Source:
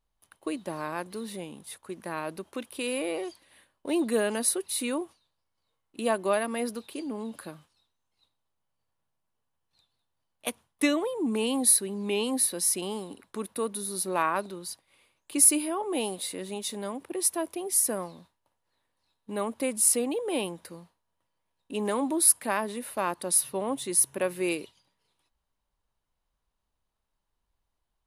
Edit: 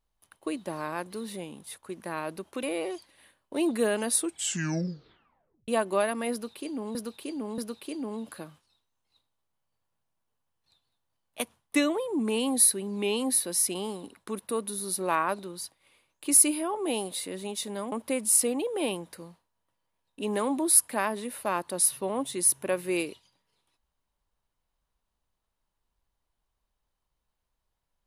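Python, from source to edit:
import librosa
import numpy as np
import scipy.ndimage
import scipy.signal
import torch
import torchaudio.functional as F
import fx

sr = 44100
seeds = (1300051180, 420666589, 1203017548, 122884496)

y = fx.edit(x, sr, fx.cut(start_s=2.63, length_s=0.33),
    fx.tape_stop(start_s=4.42, length_s=1.59),
    fx.repeat(start_s=6.65, length_s=0.63, count=3),
    fx.cut(start_s=16.99, length_s=2.45), tone=tone)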